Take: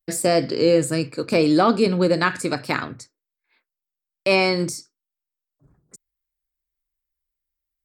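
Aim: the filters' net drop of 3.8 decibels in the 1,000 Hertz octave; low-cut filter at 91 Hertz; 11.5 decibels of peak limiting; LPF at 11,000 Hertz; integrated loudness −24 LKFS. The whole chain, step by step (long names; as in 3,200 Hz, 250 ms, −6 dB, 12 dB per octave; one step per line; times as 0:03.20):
high-pass filter 91 Hz
low-pass filter 11,000 Hz
parametric band 1,000 Hz −5.5 dB
level +3.5 dB
brickwall limiter −13.5 dBFS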